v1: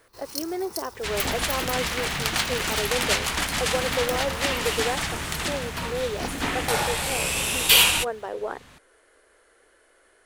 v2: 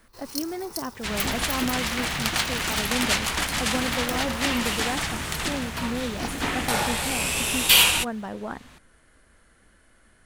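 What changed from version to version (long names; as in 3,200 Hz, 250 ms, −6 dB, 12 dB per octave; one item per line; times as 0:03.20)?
speech: add low shelf with overshoot 280 Hz +14 dB, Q 3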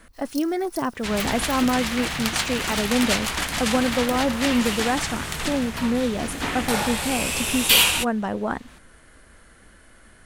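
speech +7.5 dB
first sound: add guitar amp tone stack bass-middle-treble 5-5-5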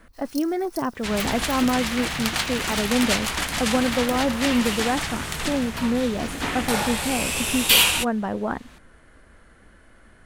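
speech: add high-shelf EQ 3,500 Hz −10.5 dB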